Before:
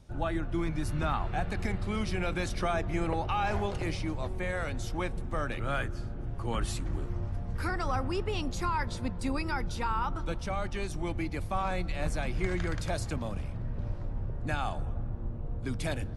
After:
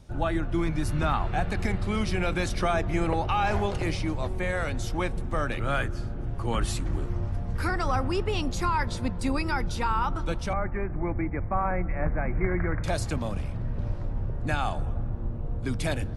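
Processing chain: 10.53–12.84 steep low-pass 2200 Hz 72 dB/oct; gain +4.5 dB

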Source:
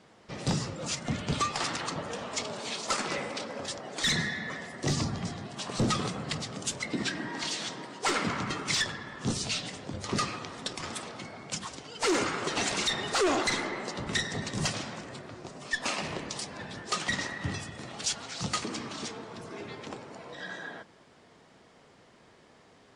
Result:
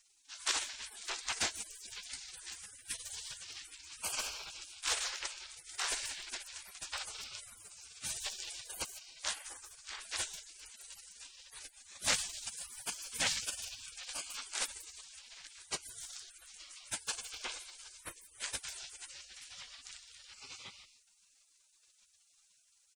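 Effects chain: speakerphone echo 0.15 s, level -8 dB; spectral gate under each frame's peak -25 dB weak; gain +7.5 dB

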